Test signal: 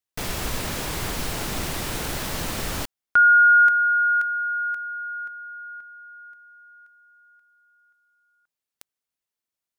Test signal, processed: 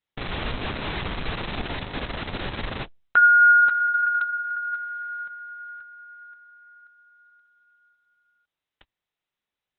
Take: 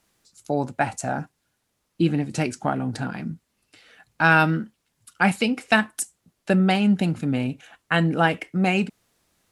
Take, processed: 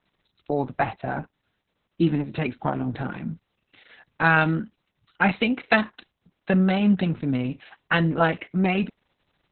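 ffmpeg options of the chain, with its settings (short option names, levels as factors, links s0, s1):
-af "lowpass=f=5000:w=0.5412,lowpass=f=5000:w=1.3066" -ar 48000 -c:a libopus -b:a 6k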